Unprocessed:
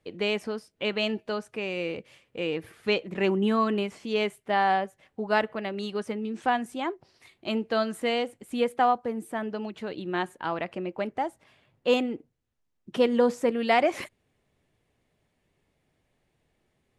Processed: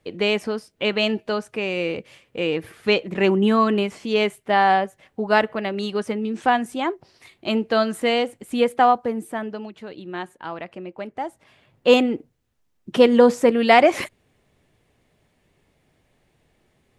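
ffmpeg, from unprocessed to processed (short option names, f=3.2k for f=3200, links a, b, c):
-af "volume=17dB,afade=t=out:st=9.05:d=0.69:silence=0.375837,afade=t=in:st=11.11:d=0.81:silence=0.298538"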